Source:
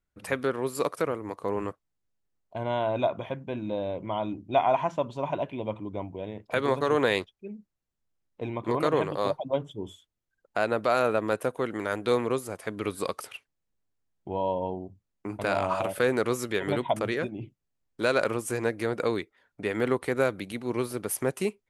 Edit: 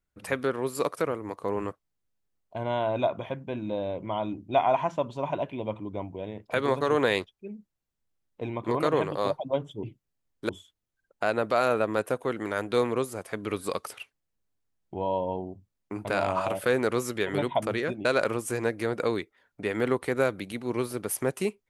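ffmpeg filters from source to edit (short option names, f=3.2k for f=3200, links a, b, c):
-filter_complex "[0:a]asplit=4[a][b][c][d];[a]atrim=end=9.832[e];[b]atrim=start=17.388:end=18.052[f];[c]atrim=start=9.828:end=17.392[g];[d]atrim=start=18.048[h];[e][f]acrossfade=d=0.004:c1=hsin:c2=hsin[i];[i][g]acrossfade=d=0.004:c1=hsin:c2=hsin[j];[j][h]acrossfade=d=0.004:c1=hsin:c2=hsin"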